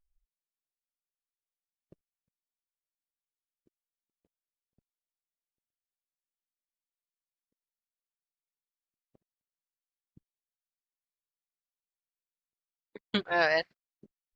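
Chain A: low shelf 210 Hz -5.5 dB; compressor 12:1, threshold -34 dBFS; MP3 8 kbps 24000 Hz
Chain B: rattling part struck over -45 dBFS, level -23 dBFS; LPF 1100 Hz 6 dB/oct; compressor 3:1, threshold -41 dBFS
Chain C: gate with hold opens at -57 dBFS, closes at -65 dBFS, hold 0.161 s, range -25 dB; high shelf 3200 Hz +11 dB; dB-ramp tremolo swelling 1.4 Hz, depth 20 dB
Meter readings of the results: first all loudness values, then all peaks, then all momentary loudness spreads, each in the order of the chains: -41.0, -42.5, -29.5 LUFS; -25.0, -27.0, -12.5 dBFS; 18, 16, 15 LU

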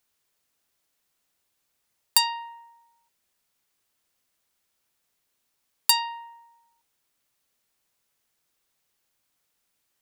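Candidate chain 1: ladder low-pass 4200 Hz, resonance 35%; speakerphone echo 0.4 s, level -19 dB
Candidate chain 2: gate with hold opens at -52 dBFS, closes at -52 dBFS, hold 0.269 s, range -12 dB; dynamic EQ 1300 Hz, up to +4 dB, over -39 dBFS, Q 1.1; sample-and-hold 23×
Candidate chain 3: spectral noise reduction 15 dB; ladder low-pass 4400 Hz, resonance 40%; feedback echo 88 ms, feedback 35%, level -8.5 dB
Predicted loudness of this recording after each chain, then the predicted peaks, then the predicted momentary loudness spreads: -34.0, -26.0, -32.5 LUFS; -18.0, -5.5, -17.5 dBFS; 19, 14, 16 LU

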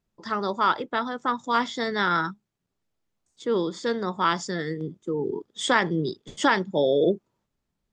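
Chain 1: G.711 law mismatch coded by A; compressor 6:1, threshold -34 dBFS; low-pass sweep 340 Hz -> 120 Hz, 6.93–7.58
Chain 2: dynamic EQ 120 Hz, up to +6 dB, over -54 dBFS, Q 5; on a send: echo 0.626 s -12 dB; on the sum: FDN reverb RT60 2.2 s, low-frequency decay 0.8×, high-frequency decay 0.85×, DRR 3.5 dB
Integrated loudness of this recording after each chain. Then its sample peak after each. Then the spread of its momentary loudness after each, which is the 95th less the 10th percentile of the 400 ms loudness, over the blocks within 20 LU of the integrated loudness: -37.5, -24.5 LUFS; -18.5, -5.5 dBFS; 8, 11 LU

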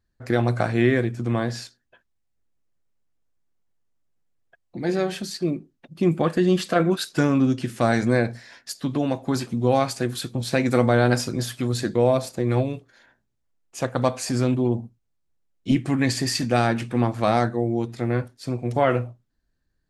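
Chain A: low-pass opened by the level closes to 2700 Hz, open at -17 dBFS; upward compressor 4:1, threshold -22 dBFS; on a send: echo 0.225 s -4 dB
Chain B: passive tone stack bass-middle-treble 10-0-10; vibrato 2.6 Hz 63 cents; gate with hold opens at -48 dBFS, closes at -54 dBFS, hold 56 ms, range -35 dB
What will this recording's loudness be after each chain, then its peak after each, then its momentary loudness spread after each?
-22.0, -35.0 LUFS; -3.0, -13.5 dBFS; 10, 12 LU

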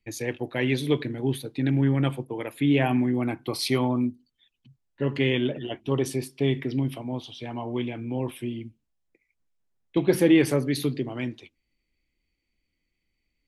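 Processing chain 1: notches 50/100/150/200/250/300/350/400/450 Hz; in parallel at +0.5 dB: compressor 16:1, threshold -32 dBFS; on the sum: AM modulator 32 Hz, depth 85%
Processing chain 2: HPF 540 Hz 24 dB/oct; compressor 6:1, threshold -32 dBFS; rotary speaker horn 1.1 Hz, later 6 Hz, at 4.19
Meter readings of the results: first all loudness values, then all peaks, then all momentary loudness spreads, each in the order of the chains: -29.0, -40.5 LUFS; -7.5, -22.5 dBFS; 10, 9 LU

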